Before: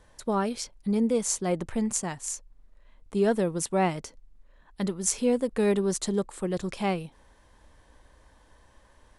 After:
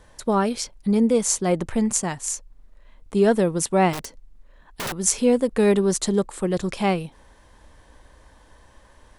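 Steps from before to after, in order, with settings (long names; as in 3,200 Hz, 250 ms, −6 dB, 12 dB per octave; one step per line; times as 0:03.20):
0:03.93–0:04.99: wrap-around overflow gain 29.5 dB
level +6 dB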